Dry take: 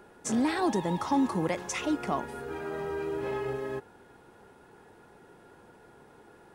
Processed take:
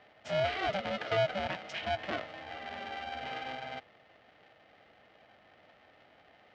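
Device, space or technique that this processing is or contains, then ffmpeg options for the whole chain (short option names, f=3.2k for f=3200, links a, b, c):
ring modulator pedal into a guitar cabinet: -af "aeval=exprs='val(0)*sgn(sin(2*PI*390*n/s))':c=same,highpass=110,equalizer=f=150:t=q:w=4:g=-4,equalizer=f=650:t=q:w=4:g=8,equalizer=f=1k:t=q:w=4:g=-7,equalizer=f=2k:t=q:w=4:g=6,equalizer=f=3k:t=q:w=4:g=6,lowpass=f=4.5k:w=0.5412,lowpass=f=4.5k:w=1.3066,volume=-7dB"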